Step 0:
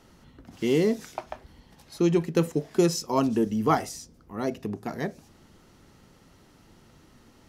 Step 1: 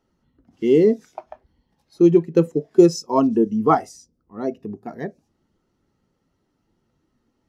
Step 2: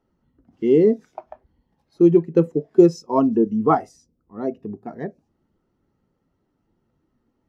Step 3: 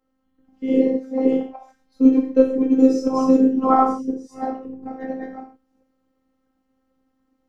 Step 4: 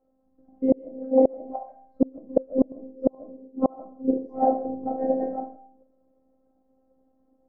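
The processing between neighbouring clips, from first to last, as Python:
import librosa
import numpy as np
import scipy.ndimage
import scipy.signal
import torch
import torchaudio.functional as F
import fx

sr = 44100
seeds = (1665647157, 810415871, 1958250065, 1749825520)

y1 = fx.bass_treble(x, sr, bass_db=-4, treble_db=1)
y1 = fx.spectral_expand(y1, sr, expansion=1.5)
y1 = y1 * 10.0 ** (7.0 / 20.0)
y2 = fx.high_shelf(y1, sr, hz=2900.0, db=-12.0)
y3 = fx.reverse_delay(y2, sr, ms=342, wet_db=-1)
y3 = fx.rev_gated(y3, sr, seeds[0], gate_ms=180, shape='falling', drr_db=-1.5)
y3 = fx.robotise(y3, sr, hz=262.0)
y3 = y3 * 10.0 ** (-2.0 / 20.0)
y4 = fx.gate_flip(y3, sr, shuts_db=-10.0, range_db=-34)
y4 = fx.lowpass_res(y4, sr, hz=660.0, q=3.6)
y4 = fx.rev_freeverb(y4, sr, rt60_s=0.43, hf_ratio=0.35, predelay_ms=105, drr_db=19.0)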